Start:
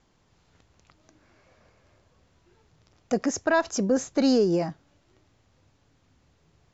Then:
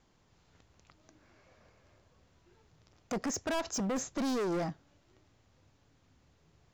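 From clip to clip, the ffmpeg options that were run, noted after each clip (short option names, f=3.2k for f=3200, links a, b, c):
-af "asoftclip=type=hard:threshold=-27.5dB,volume=-3dB"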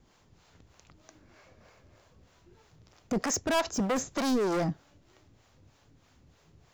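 -filter_complex "[0:a]acrossover=split=450[a][b];[a]aeval=exprs='val(0)*(1-0.7/2+0.7/2*cos(2*PI*3.2*n/s))':c=same[c];[b]aeval=exprs='val(0)*(1-0.7/2-0.7/2*cos(2*PI*3.2*n/s))':c=same[d];[c][d]amix=inputs=2:normalize=0,highshelf=f=9.4k:g=3,volume=8.5dB"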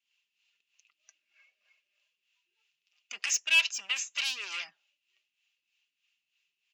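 -af "afftdn=nr=17:nf=-54,highpass=f=2.7k:t=q:w=8.1,aecho=1:1:5:0.4"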